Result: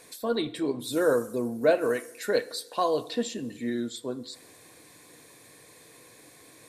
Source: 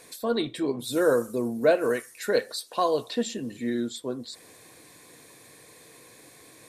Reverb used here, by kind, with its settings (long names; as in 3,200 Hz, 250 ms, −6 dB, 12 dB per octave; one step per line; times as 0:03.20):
feedback delay network reverb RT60 1 s, low-frequency decay 0.9×, high-frequency decay 0.8×, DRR 16 dB
level −1.5 dB